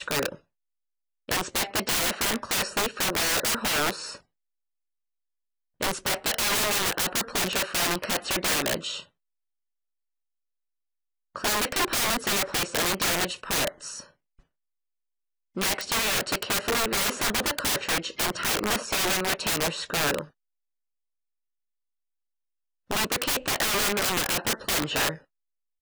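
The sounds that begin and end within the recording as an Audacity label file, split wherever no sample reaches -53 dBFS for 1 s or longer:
5.800000	9.080000	sound
11.350000	14.400000	sound
15.550000	20.310000	sound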